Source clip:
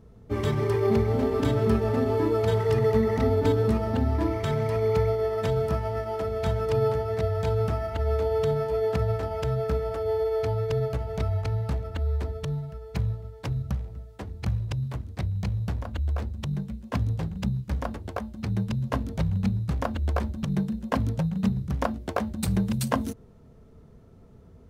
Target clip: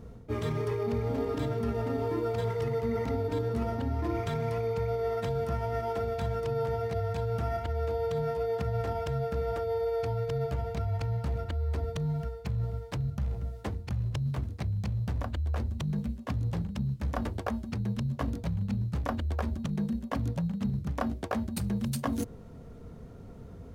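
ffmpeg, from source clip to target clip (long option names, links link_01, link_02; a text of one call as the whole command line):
ffmpeg -i in.wav -af "areverse,acompressor=threshold=-34dB:ratio=6,areverse,asetrate=45864,aresample=44100,volume=5.5dB" out.wav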